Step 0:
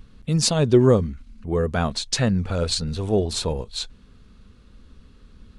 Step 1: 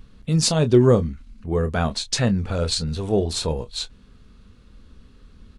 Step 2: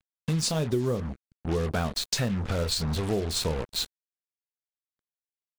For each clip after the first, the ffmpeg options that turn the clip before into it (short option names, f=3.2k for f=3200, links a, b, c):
-filter_complex "[0:a]asplit=2[a][b];[b]adelay=25,volume=-11dB[c];[a][c]amix=inputs=2:normalize=0"
-af "acrusher=bits=4:mix=0:aa=0.5,acompressor=threshold=-24dB:ratio=6"